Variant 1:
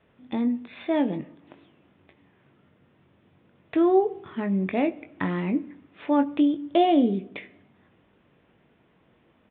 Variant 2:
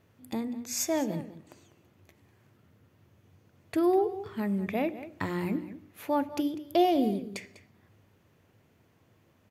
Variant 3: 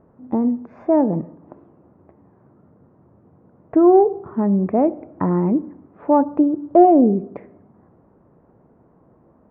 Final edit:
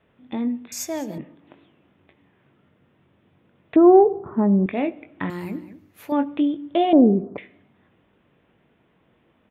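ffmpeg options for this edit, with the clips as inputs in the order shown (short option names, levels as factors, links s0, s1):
-filter_complex "[1:a]asplit=2[s0][s1];[2:a]asplit=2[s2][s3];[0:a]asplit=5[s4][s5][s6][s7][s8];[s4]atrim=end=0.722[s9];[s0]atrim=start=0.718:end=1.182[s10];[s5]atrim=start=1.178:end=3.762[s11];[s2]atrim=start=3.758:end=4.662[s12];[s6]atrim=start=4.658:end=5.302[s13];[s1]atrim=start=5.298:end=6.122[s14];[s7]atrim=start=6.118:end=6.932[s15];[s3]atrim=start=6.928:end=7.382[s16];[s8]atrim=start=7.378[s17];[s9][s10]acrossfade=d=0.004:c1=hsin:c2=hsin[s18];[s18][s11]acrossfade=d=0.004:c1=hsin:c2=hsin[s19];[s19][s12]acrossfade=d=0.004:c1=hsin:c2=hsin[s20];[s20][s13]acrossfade=d=0.004:c1=hsin:c2=hsin[s21];[s21][s14]acrossfade=d=0.004:c1=hsin:c2=hsin[s22];[s22][s15]acrossfade=d=0.004:c1=hsin:c2=hsin[s23];[s23][s16]acrossfade=d=0.004:c1=hsin:c2=hsin[s24];[s24][s17]acrossfade=d=0.004:c1=hsin:c2=hsin"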